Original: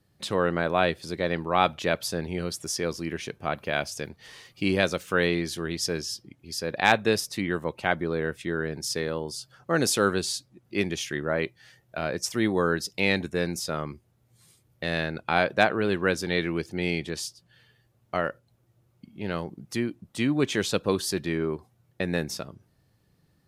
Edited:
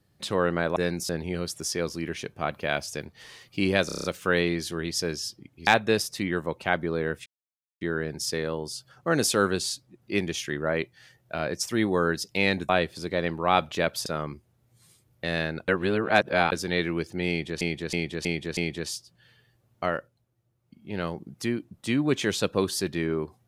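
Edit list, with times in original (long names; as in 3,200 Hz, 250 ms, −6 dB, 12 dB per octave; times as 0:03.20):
0:00.76–0:02.13: swap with 0:13.32–0:13.65
0:04.90: stutter 0.03 s, 7 plays
0:06.53–0:06.85: remove
0:08.44: splice in silence 0.55 s
0:15.27–0:16.11: reverse
0:16.88–0:17.20: repeat, 5 plays
0:18.19–0:19.30: duck −8.5 dB, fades 0.38 s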